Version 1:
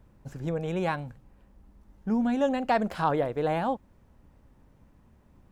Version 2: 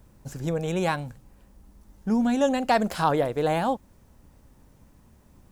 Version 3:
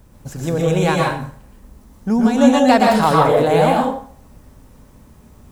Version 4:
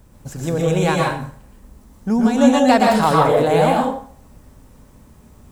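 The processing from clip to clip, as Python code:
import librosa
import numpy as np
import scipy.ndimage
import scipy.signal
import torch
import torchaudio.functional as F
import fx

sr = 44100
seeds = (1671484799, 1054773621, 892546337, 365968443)

y1 = fx.bass_treble(x, sr, bass_db=0, treble_db=11)
y1 = y1 * librosa.db_to_amplitude(3.0)
y2 = fx.rev_plate(y1, sr, seeds[0], rt60_s=0.51, hf_ratio=0.8, predelay_ms=105, drr_db=-2.0)
y2 = y2 * librosa.db_to_amplitude(6.0)
y3 = fx.peak_eq(y2, sr, hz=7900.0, db=2.5, octaves=0.33)
y3 = y3 * librosa.db_to_amplitude(-1.0)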